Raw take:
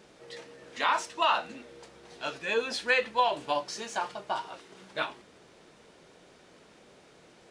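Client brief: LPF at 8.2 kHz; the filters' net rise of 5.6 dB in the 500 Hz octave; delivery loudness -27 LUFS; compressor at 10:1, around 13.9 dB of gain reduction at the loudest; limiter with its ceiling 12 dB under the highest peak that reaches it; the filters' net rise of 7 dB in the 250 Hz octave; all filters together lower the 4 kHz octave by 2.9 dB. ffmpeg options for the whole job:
-af "lowpass=8200,equalizer=f=250:t=o:g=7,equalizer=f=500:t=o:g=5,equalizer=f=4000:t=o:g=-4,acompressor=threshold=0.0251:ratio=10,volume=6.68,alimiter=limit=0.188:level=0:latency=1"

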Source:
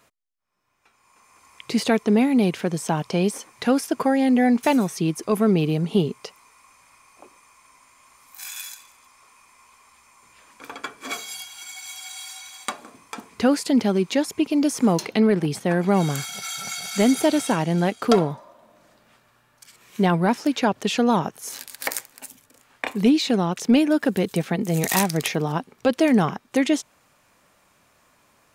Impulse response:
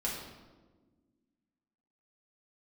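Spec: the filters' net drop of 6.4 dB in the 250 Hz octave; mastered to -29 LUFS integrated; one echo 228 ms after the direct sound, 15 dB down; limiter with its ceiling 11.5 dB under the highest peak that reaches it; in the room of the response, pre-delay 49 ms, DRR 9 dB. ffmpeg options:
-filter_complex "[0:a]equalizer=f=250:t=o:g=-8,alimiter=limit=0.158:level=0:latency=1,aecho=1:1:228:0.178,asplit=2[s0][s1];[1:a]atrim=start_sample=2205,adelay=49[s2];[s1][s2]afir=irnorm=-1:irlink=0,volume=0.224[s3];[s0][s3]amix=inputs=2:normalize=0,volume=0.794"

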